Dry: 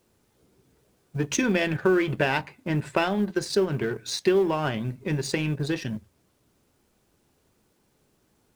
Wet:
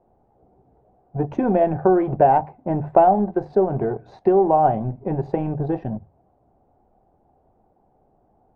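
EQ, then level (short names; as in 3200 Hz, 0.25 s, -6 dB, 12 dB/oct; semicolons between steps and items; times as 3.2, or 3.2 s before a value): synth low-pass 750 Hz, resonance Q 7.5; low shelf 74 Hz +10 dB; notches 50/100/150 Hz; +1.5 dB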